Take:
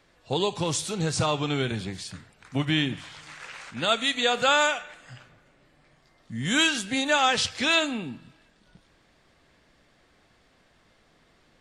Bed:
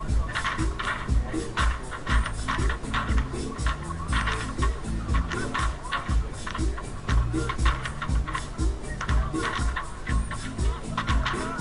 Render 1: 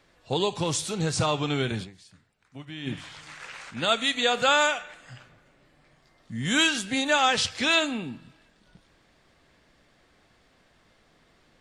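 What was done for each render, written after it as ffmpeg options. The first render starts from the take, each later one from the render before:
-filter_complex "[0:a]asplit=3[a][b][c];[a]atrim=end=2.08,asetpts=PTS-STARTPTS,afade=t=out:st=1.83:d=0.25:c=exp:silence=0.16788[d];[b]atrim=start=2.08:end=2.63,asetpts=PTS-STARTPTS,volume=-15.5dB[e];[c]atrim=start=2.63,asetpts=PTS-STARTPTS,afade=t=in:d=0.25:c=exp:silence=0.16788[f];[d][e][f]concat=n=3:v=0:a=1"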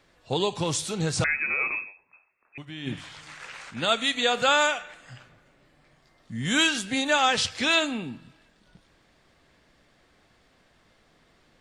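-filter_complex "[0:a]asettb=1/sr,asplit=3[a][b][c];[a]atrim=end=1.244[d];[b]atrim=start=1.24:end=2.58,asetpts=PTS-STARTPTS,afade=t=in:d=0.004:c=qsin,afade=t=out:st=1.336:d=0.004:c=qsin,lowpass=f=2.3k:t=q:w=0.5098,lowpass=f=2.3k:t=q:w=0.6013,lowpass=f=2.3k:t=q:w=0.9,lowpass=f=2.3k:t=q:w=2.563,afreqshift=-2700[e];[c]atrim=start=2.576[f];[d][e]acrossfade=d=0.004:c1=hsin:c2=qsin[g];[g][f]acrossfade=d=0.004:c1=qsin:c2=hsin"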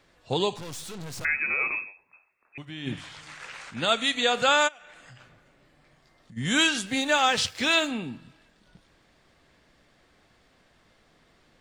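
-filter_complex "[0:a]asettb=1/sr,asplit=3[a][b][c];[a]atrim=end=0.564[d];[b]atrim=start=0.56:end=1.25,asetpts=PTS-STARTPTS,afade=t=in:d=0.004:c=qsin,afade=t=out:st=0.686:d=0.004:c=qsin,aeval=exprs='(tanh(70.8*val(0)+0.7)-tanh(0.7))/70.8':c=same[e];[c]atrim=start=1.246[f];[d][e]acrossfade=d=0.004:c1=hsin:c2=qsin[g];[g][f]acrossfade=d=0.004:c1=qsin:c2=hsin,asplit=3[h][i][j];[h]afade=t=out:st=4.67:d=0.02[k];[i]acompressor=threshold=-45dB:ratio=8:attack=3.2:release=140:knee=1:detection=peak,afade=t=in:st=4.67:d=0.02,afade=t=out:st=6.36:d=0.02[l];[j]afade=t=in:st=6.36:d=0.02[m];[k][l][m]amix=inputs=3:normalize=0,asettb=1/sr,asplit=3[n][o][p];[n]atrim=end=6.864[q];[o]atrim=start=6.86:end=7.91,asetpts=PTS-STARTPTS,afade=t=in:d=0.004:c=qsin,afade=t=out:st=1.046:d=0.004:c=qsin,aeval=exprs='sgn(val(0))*max(abs(val(0))-0.00398,0)':c=same[r];[p]atrim=start=7.906[s];[q][r]acrossfade=d=0.004:c1=hsin:c2=qsin[t];[t][s]acrossfade=d=0.004:c1=qsin:c2=hsin"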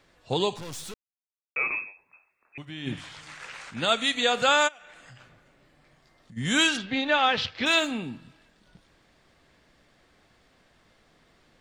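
-filter_complex "[0:a]asplit=3[a][b][c];[a]afade=t=out:st=6.76:d=0.02[d];[b]lowpass=f=4.1k:w=0.5412,lowpass=f=4.1k:w=1.3066,afade=t=in:st=6.76:d=0.02,afade=t=out:st=7.65:d=0.02[e];[c]afade=t=in:st=7.65:d=0.02[f];[d][e][f]amix=inputs=3:normalize=0,asplit=3[g][h][i];[g]atrim=end=0.94,asetpts=PTS-STARTPTS,afade=t=out:st=0.936:d=0.004:c=hsin[j];[h]atrim=start=0.94:end=1.56,asetpts=PTS-STARTPTS,volume=0[k];[i]atrim=start=1.56,asetpts=PTS-STARTPTS,afade=t=in:d=0.004:c=hsin[l];[j][k][l]concat=n=3:v=0:a=1"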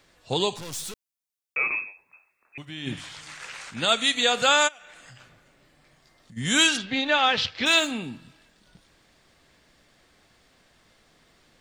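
-af "highshelf=f=3.7k:g=7.5"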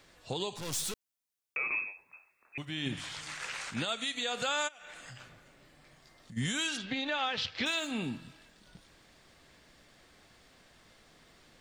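-af "acompressor=threshold=-28dB:ratio=3,alimiter=limit=-22.5dB:level=0:latency=1:release=262"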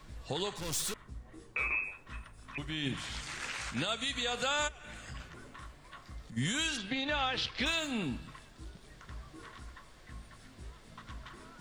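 -filter_complex "[1:a]volume=-22.5dB[a];[0:a][a]amix=inputs=2:normalize=0"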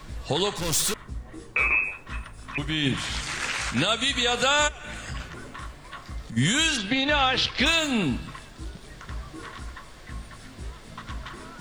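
-af "volume=10.5dB"

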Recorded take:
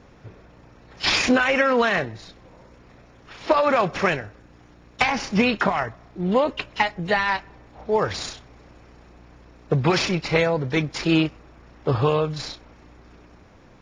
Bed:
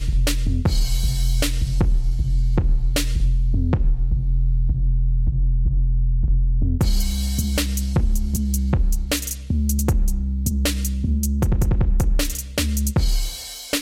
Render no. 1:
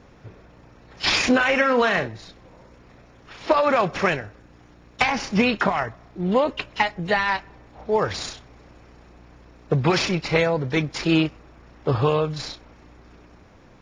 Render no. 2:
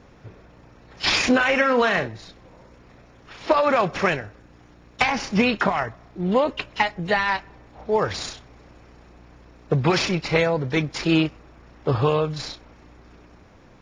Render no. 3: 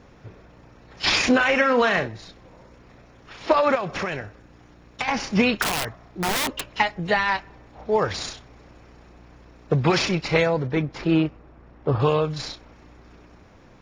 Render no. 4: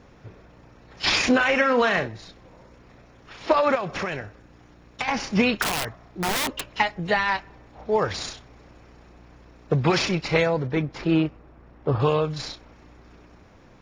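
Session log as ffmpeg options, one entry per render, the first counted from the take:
-filter_complex "[0:a]asettb=1/sr,asplit=3[a][b][c];[a]atrim=end=1.364[d];[b]atrim=start=1.36:end=2.08,asetpts=PTS-STARTPTS,afade=t=in:d=0.004:c=qsin,afade=t=out:st=0.716:d=0.004:c=qsin,asplit=2[e][f];[f]adelay=45,volume=-11dB[g];[e][g]amix=inputs=2:normalize=0,atrim=end_sample=31752[h];[c]atrim=start=2.076[i];[d][h]acrossfade=d=0.004:c1=hsin:c2=qsin[j];[j][i]acrossfade=d=0.004:c1=qsin:c2=hsin"
-af anull
-filter_complex "[0:a]asettb=1/sr,asplit=3[a][b][c];[a]atrim=end=3.754[d];[b]atrim=start=3.75:end=5.08,asetpts=PTS-STARTPTS,afade=t=in:d=0.004:c=qsin,afade=t=out:st=1.326:d=0.004:c=qsin,acompressor=threshold=-23dB:ratio=6:attack=3.2:release=140:knee=1:detection=peak[e];[c]atrim=start=5.076[f];[d][e]acrossfade=d=0.004:c1=hsin:c2=qsin[g];[g][f]acrossfade=d=0.004:c1=qsin:c2=hsin,asettb=1/sr,asplit=3[h][i][j];[h]atrim=end=5.624[k];[i]atrim=start=5.62:end=6.63,asetpts=PTS-STARTPTS,afade=t=in:d=0.004:c=qsin,afade=t=out:st=1.006:d=0.004:c=qsin,aeval=exprs='(mod(8.91*val(0)+1,2)-1)/8.91':c=same[l];[j]atrim=start=6.626[m];[k][l]acrossfade=d=0.004:c1=hsin:c2=qsin[n];[n][m]acrossfade=d=0.004:c1=qsin:c2=hsin,asettb=1/sr,asplit=3[o][p][q];[o]atrim=end=10.674[r];[p]atrim=start=10.67:end=12,asetpts=PTS-STARTPTS,afade=t=in:d=0.004:c=qsin,afade=t=out:st=1.326:d=0.004:c=qsin,lowpass=f=1.3k:p=1[s];[q]atrim=start=11.996[t];[r][s]acrossfade=d=0.004:c1=hsin:c2=qsin[u];[u][t]acrossfade=d=0.004:c1=qsin:c2=hsin"
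-af "volume=-1dB"

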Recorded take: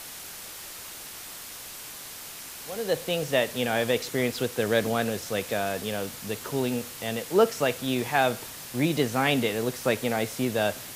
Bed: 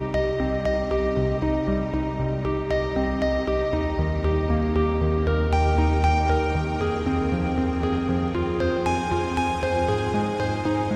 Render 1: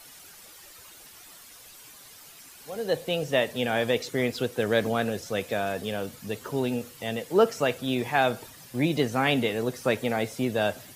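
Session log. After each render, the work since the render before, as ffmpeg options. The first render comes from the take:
-af "afftdn=nr=11:nf=-41"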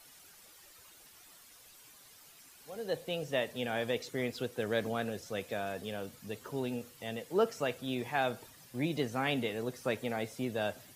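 -af "volume=-8.5dB"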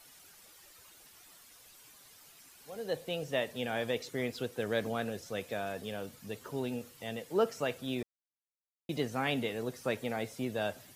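-filter_complex "[0:a]asplit=3[a][b][c];[a]atrim=end=8.03,asetpts=PTS-STARTPTS,afade=t=out:st=8.026:d=0.004:c=hsin[d];[b]atrim=start=8.03:end=8.89,asetpts=PTS-STARTPTS,volume=0[e];[c]atrim=start=8.89,asetpts=PTS-STARTPTS,afade=t=in:d=0.004:c=hsin[f];[d][e][f]concat=n=3:v=0:a=1"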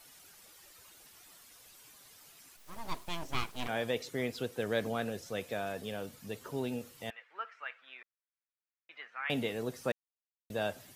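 -filter_complex "[0:a]asplit=3[a][b][c];[a]afade=t=out:st=2.56:d=0.02[d];[b]aeval=exprs='abs(val(0))':c=same,afade=t=in:st=2.56:d=0.02,afade=t=out:st=3.67:d=0.02[e];[c]afade=t=in:st=3.67:d=0.02[f];[d][e][f]amix=inputs=3:normalize=0,asettb=1/sr,asplit=3[g][h][i];[g]atrim=end=7.104[j];[h]atrim=start=7.1:end=9.3,asetpts=PTS-STARTPTS,afade=t=in:d=0.004:c=qsin,afade=t=out:st=2.196:d=0.004:c=qsin,asuperpass=centerf=1700:order=4:qfactor=1.4[k];[i]atrim=start=9.296[l];[j][k]acrossfade=d=0.004:c1=hsin:c2=qsin[m];[m][l]acrossfade=d=0.004:c1=qsin:c2=hsin,asplit=3[n][o][p];[n]atrim=end=9.92,asetpts=PTS-STARTPTS,afade=t=out:st=9.916:d=0.004:c=hsin[q];[o]atrim=start=9.92:end=10.5,asetpts=PTS-STARTPTS,volume=0[r];[p]atrim=start=10.5,asetpts=PTS-STARTPTS,afade=t=in:d=0.004:c=hsin[s];[q][r][s]concat=n=3:v=0:a=1"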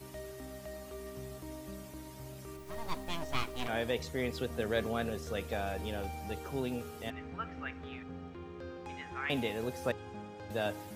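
-filter_complex "[1:a]volume=-22dB[a];[0:a][a]amix=inputs=2:normalize=0"

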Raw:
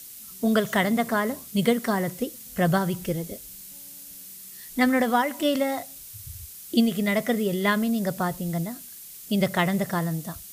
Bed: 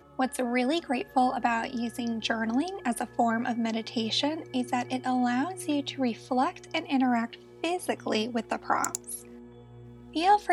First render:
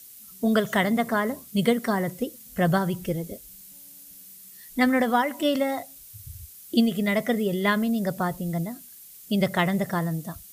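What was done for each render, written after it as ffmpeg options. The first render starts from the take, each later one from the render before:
-af "afftdn=nr=6:nf=-43"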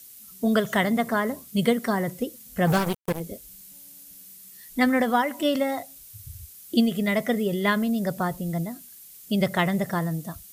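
-filter_complex "[0:a]asplit=3[a][b][c];[a]afade=t=out:st=2.66:d=0.02[d];[b]acrusher=bits=3:mix=0:aa=0.5,afade=t=in:st=2.66:d=0.02,afade=t=out:st=3.19:d=0.02[e];[c]afade=t=in:st=3.19:d=0.02[f];[d][e][f]amix=inputs=3:normalize=0"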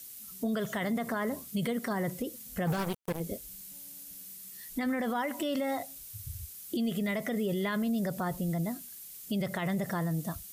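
-af "acompressor=threshold=-26dB:ratio=2,alimiter=limit=-24dB:level=0:latency=1:release=38"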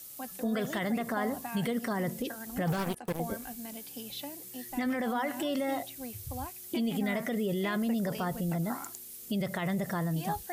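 -filter_complex "[1:a]volume=-14.5dB[a];[0:a][a]amix=inputs=2:normalize=0"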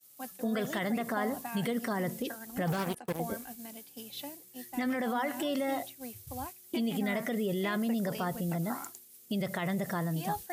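-af "highpass=f=110:p=1,agate=range=-33dB:threshold=-38dB:ratio=3:detection=peak"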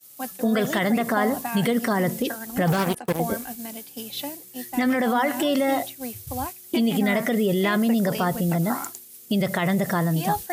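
-af "volume=10dB"

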